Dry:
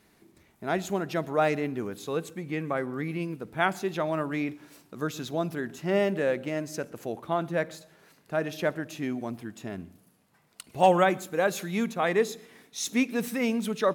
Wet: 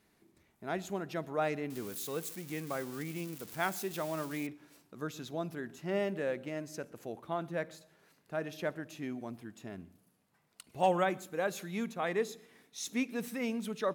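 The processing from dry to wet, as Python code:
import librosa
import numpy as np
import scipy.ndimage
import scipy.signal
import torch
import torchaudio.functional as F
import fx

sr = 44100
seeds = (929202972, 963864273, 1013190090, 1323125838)

y = fx.crossing_spikes(x, sr, level_db=-27.0, at=(1.7, 4.47))
y = y * 10.0 ** (-8.0 / 20.0)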